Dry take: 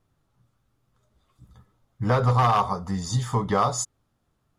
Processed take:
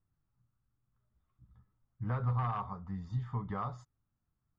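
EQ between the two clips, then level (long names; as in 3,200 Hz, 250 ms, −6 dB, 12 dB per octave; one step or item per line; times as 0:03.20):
low-pass filter 1,500 Hz 12 dB per octave
high-frequency loss of the air 52 metres
parametric band 520 Hz −12.5 dB 2.1 octaves
−8.0 dB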